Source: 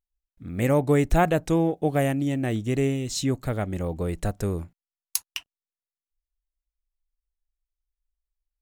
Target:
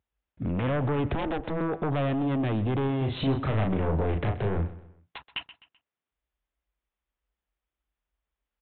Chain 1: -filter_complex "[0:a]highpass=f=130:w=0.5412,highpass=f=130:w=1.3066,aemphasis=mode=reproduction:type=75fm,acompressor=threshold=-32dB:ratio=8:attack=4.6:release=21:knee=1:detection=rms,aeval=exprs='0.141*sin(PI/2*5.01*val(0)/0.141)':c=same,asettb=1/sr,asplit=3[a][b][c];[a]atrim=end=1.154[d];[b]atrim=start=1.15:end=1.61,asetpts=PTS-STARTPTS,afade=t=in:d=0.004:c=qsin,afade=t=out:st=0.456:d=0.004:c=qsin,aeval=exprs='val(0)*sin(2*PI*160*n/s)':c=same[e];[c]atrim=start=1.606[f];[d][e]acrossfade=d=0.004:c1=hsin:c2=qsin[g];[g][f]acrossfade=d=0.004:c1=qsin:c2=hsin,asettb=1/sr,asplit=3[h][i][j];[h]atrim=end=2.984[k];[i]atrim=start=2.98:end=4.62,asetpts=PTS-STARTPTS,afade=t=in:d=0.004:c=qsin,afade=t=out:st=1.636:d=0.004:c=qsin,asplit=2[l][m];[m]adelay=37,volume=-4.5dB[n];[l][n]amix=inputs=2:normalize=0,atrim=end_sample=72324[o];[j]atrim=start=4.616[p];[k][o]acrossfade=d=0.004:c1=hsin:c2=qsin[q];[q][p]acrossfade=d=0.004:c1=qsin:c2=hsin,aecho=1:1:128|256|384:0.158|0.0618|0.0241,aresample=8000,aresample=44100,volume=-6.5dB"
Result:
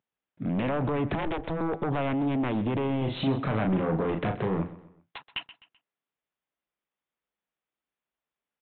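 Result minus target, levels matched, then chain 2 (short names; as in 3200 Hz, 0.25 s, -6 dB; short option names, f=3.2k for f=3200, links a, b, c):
125 Hz band -3.0 dB
-filter_complex "[0:a]highpass=f=62:w=0.5412,highpass=f=62:w=1.3066,aemphasis=mode=reproduction:type=75fm,acompressor=threshold=-32dB:ratio=8:attack=4.6:release=21:knee=1:detection=rms,aeval=exprs='0.141*sin(PI/2*5.01*val(0)/0.141)':c=same,asettb=1/sr,asplit=3[a][b][c];[a]atrim=end=1.154[d];[b]atrim=start=1.15:end=1.61,asetpts=PTS-STARTPTS,afade=t=in:d=0.004:c=qsin,afade=t=out:st=0.456:d=0.004:c=qsin,aeval=exprs='val(0)*sin(2*PI*160*n/s)':c=same[e];[c]atrim=start=1.606[f];[d][e]acrossfade=d=0.004:c1=hsin:c2=qsin[g];[g][f]acrossfade=d=0.004:c1=qsin:c2=hsin,asettb=1/sr,asplit=3[h][i][j];[h]atrim=end=2.984[k];[i]atrim=start=2.98:end=4.62,asetpts=PTS-STARTPTS,afade=t=in:d=0.004:c=qsin,afade=t=out:st=1.636:d=0.004:c=qsin,asplit=2[l][m];[m]adelay=37,volume=-4.5dB[n];[l][n]amix=inputs=2:normalize=0,atrim=end_sample=72324[o];[j]atrim=start=4.616[p];[k][o]acrossfade=d=0.004:c1=hsin:c2=qsin[q];[q][p]acrossfade=d=0.004:c1=qsin:c2=hsin,aecho=1:1:128|256|384:0.158|0.0618|0.0241,aresample=8000,aresample=44100,volume=-6.5dB"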